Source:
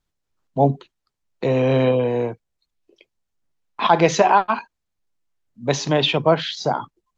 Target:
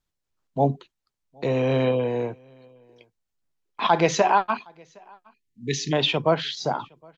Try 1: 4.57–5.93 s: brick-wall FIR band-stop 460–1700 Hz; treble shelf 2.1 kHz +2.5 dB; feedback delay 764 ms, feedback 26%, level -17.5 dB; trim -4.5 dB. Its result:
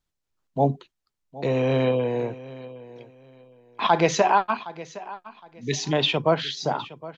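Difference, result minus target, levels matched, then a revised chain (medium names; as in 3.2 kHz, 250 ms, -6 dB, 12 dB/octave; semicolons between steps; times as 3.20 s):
echo-to-direct +12 dB
4.57–5.93 s: brick-wall FIR band-stop 460–1700 Hz; treble shelf 2.1 kHz +2.5 dB; feedback delay 764 ms, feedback 26%, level -29 dB; trim -4.5 dB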